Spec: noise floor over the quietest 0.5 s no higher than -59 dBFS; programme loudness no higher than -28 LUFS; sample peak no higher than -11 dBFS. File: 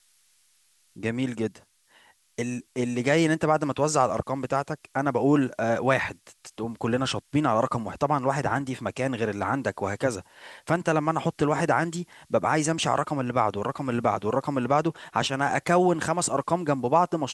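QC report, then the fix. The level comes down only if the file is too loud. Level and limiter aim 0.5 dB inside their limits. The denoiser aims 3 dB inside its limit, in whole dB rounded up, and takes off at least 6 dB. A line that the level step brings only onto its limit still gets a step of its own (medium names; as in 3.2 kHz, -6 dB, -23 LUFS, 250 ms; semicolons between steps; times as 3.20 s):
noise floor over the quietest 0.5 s -64 dBFS: pass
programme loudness -26.0 LUFS: fail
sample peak -7.0 dBFS: fail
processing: trim -2.5 dB; peak limiter -11.5 dBFS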